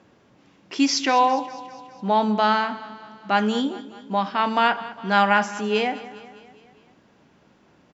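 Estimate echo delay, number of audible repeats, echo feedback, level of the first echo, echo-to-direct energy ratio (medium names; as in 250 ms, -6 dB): 204 ms, 4, 57%, -17.0 dB, -15.5 dB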